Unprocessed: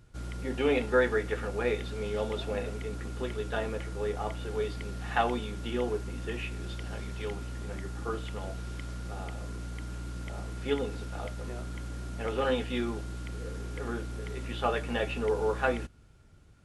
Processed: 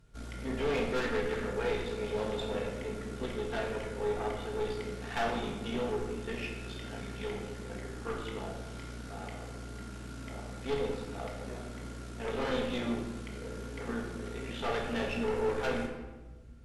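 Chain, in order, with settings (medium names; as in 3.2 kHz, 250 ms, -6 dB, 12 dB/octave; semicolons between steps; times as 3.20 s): valve stage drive 30 dB, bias 0.8; simulated room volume 800 m³, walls mixed, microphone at 1.6 m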